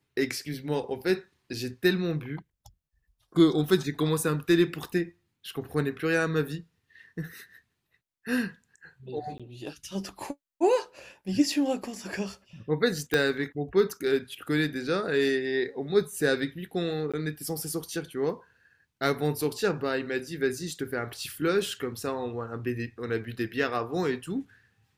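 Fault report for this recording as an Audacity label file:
9.380000	9.400000	dropout 16 ms
11.830000	11.830000	dropout 4.1 ms
13.140000	13.140000	pop -11 dBFS
17.120000	17.140000	dropout 16 ms

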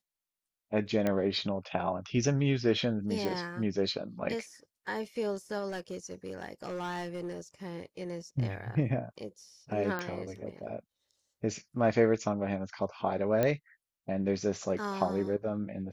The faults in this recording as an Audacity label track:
1.070000	1.070000	pop -17 dBFS
3.250000	3.250000	pop
5.680000	7.400000	clipped -33 dBFS
9.990000	9.990000	pop -21 dBFS
13.430000	13.430000	pop -15 dBFS

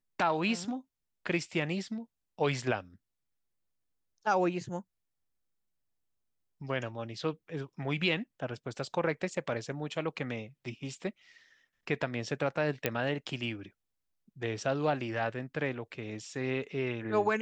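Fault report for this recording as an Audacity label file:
12.860000	12.860000	pop -13 dBFS

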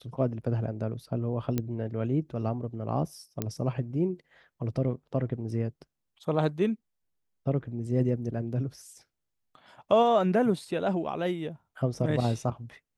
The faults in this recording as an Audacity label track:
1.580000	1.580000	pop -15 dBFS
3.420000	3.420000	pop -15 dBFS

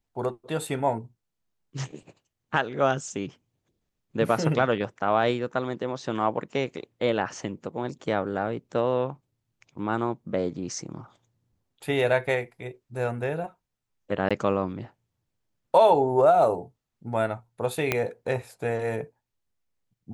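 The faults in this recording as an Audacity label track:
14.290000	14.310000	dropout 16 ms
17.920000	17.920000	pop -8 dBFS

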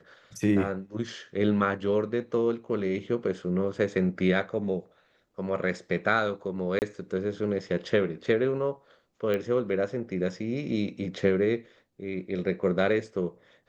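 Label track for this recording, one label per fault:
6.790000	6.820000	dropout 29 ms
9.340000	9.340000	pop -18 dBFS

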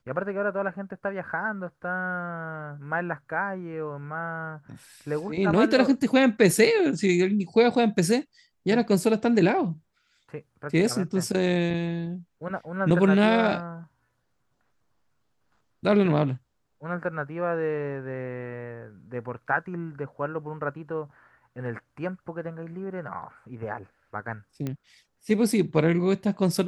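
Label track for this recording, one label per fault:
24.670000	24.670000	pop -18 dBFS

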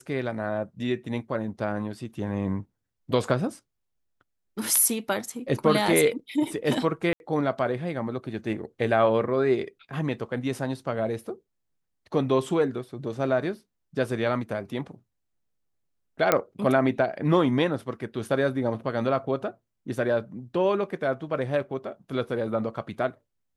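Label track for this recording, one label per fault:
7.130000	7.200000	dropout 71 ms
16.320000	16.320000	pop -5 dBFS

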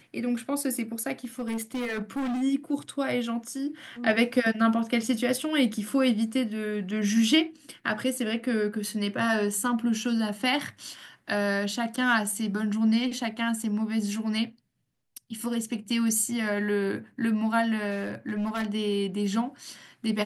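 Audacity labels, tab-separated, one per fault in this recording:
1.240000	2.430000	clipped -27 dBFS
17.900000	18.660000	clipped -25.5 dBFS

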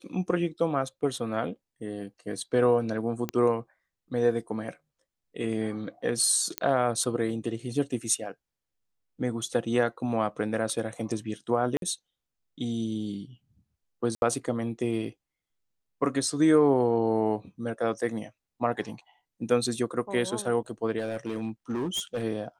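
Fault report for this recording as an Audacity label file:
3.290000	3.290000	pop -15 dBFS
6.580000	6.580000	pop -10 dBFS
11.770000	11.820000	dropout 52 ms
14.150000	14.220000	dropout 71 ms
20.980000	22.240000	clipped -26 dBFS

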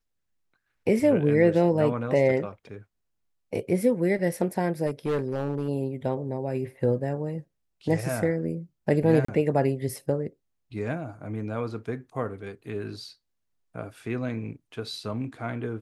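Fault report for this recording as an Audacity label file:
4.860000	5.680000	clipped -22.5 dBFS
9.250000	9.280000	dropout 34 ms

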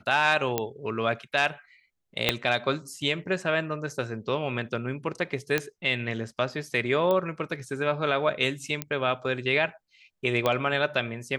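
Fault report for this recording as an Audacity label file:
0.580000	0.580000	pop -10 dBFS
2.290000	2.290000	pop -5 dBFS
5.580000	5.580000	pop -10 dBFS
7.110000	7.110000	pop -15 dBFS
8.820000	8.820000	pop -12 dBFS
10.460000	10.460000	pop -11 dBFS

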